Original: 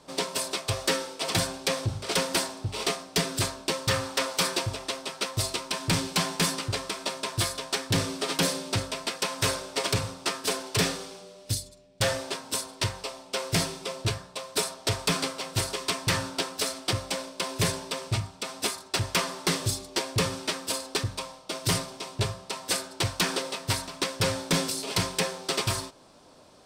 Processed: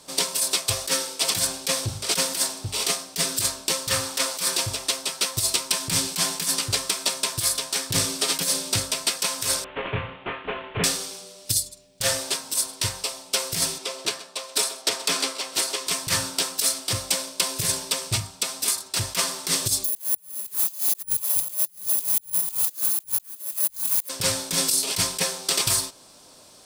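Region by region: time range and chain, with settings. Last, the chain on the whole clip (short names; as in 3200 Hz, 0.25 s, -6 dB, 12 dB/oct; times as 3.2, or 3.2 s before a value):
9.64–10.84 CVSD 16 kbps + doubler 24 ms -7 dB
13.78–15.87 HPF 240 Hz 24 dB/oct + high shelf 7800 Hz -11 dB + echo 0.128 s -17.5 dB
19.84–24.09 regenerating reverse delay 0.161 s, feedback 58%, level -13 dB + careless resampling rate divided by 4×, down filtered, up zero stuff
whole clip: pre-emphasis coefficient 0.8; negative-ratio compressor -33 dBFS, ratio -0.5; gain +8.5 dB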